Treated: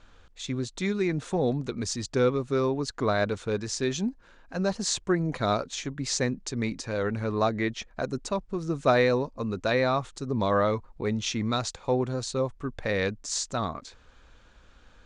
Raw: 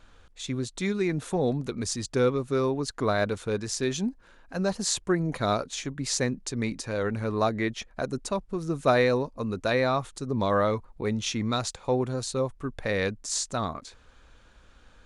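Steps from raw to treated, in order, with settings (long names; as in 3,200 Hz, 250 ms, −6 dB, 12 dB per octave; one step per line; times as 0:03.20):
low-pass filter 7,800 Hz 24 dB per octave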